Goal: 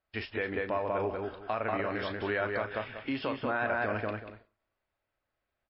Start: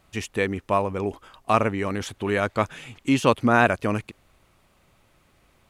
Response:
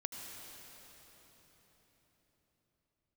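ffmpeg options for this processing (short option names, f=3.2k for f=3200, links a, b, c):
-filter_complex "[0:a]acompressor=threshold=-22dB:ratio=4,bandreject=f=1.2k:w=24,asplit=2[a][b];[b]adelay=188,lowpass=f=2.2k:p=1,volume=-3dB,asplit=2[c][d];[d]adelay=188,lowpass=f=2.2k:p=1,volume=0.25,asplit=2[e][f];[f]adelay=188,lowpass=f=2.2k:p=1,volume=0.25,asplit=2[g][h];[h]adelay=188,lowpass=f=2.2k:p=1,volume=0.25[i];[a][c][e][g][i]amix=inputs=5:normalize=0,agate=range=-21dB:threshold=-47dB:ratio=16:detection=peak,asplit=2[j][k];[k]adelay=37,volume=-13dB[l];[j][l]amix=inputs=2:normalize=0,alimiter=limit=-17dB:level=0:latency=1:release=91,equalizer=f=160:t=o:w=0.67:g=-9,equalizer=f=630:t=o:w=0.67:g=6,equalizer=f=1.6k:t=o:w=0.67:g=8,volume=-6dB" -ar 12000 -c:a libmp3lame -b:a 24k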